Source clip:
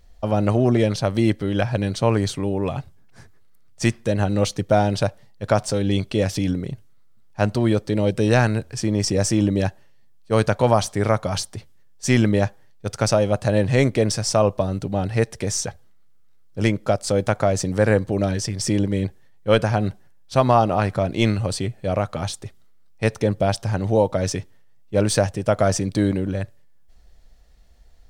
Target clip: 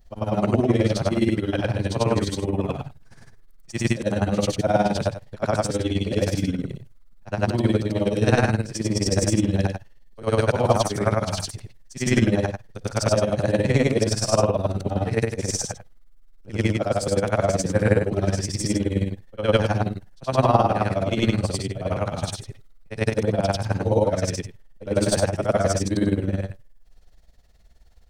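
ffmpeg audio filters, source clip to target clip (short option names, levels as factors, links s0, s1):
-filter_complex "[0:a]afftfilt=real='re':imag='-im':win_size=8192:overlap=0.75,acrossover=split=180[s0][s1];[s0]crystalizer=i=0.5:c=0[s2];[s2][s1]amix=inputs=2:normalize=0,tremolo=f=19:d=0.72,volume=2"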